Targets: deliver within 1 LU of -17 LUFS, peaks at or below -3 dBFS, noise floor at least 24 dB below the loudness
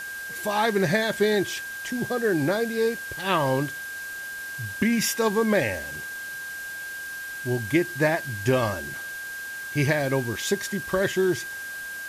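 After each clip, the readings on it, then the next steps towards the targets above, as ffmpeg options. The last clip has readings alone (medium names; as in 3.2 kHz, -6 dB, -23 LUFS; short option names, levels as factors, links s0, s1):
steady tone 1.6 kHz; tone level -33 dBFS; noise floor -35 dBFS; noise floor target -50 dBFS; loudness -26.0 LUFS; peak level -9.5 dBFS; loudness target -17.0 LUFS
-> -af "bandreject=f=1600:w=30"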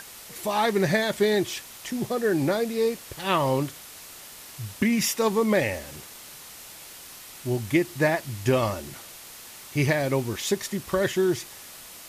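steady tone not found; noise floor -44 dBFS; noise floor target -50 dBFS
-> -af "afftdn=nr=6:nf=-44"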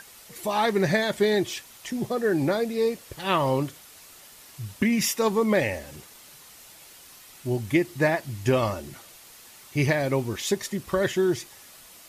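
noise floor -49 dBFS; noise floor target -50 dBFS
-> -af "afftdn=nr=6:nf=-49"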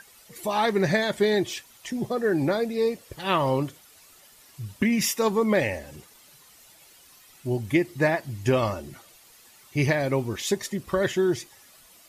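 noise floor -54 dBFS; loudness -25.5 LUFS; peak level -10.0 dBFS; loudness target -17.0 LUFS
-> -af "volume=2.66,alimiter=limit=0.708:level=0:latency=1"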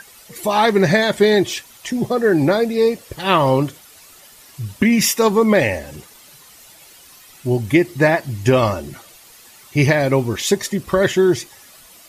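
loudness -17.0 LUFS; peak level -3.0 dBFS; noise floor -45 dBFS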